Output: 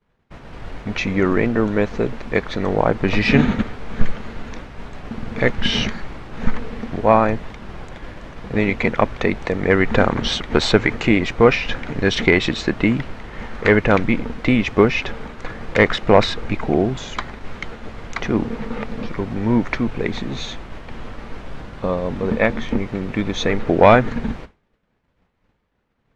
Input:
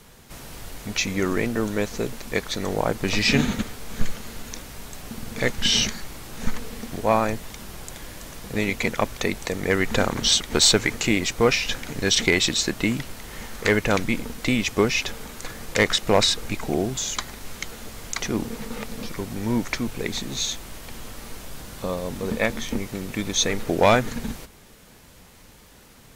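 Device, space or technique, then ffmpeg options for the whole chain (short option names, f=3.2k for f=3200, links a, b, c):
hearing-loss simulation: -af "lowpass=2.2k,agate=range=-33dB:threshold=-36dB:ratio=3:detection=peak,volume=6.5dB"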